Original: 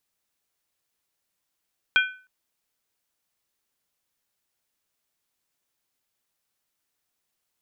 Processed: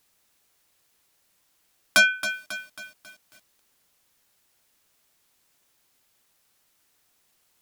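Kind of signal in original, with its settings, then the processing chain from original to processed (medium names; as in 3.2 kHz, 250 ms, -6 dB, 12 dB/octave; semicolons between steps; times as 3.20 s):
skin hit length 0.31 s, lowest mode 1.51 kHz, modes 3, decay 0.39 s, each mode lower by 3 dB, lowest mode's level -14.5 dB
in parallel at -8.5 dB: sine folder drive 14 dB, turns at -7.5 dBFS; on the sum: bit-crushed delay 272 ms, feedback 55%, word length 7-bit, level -11 dB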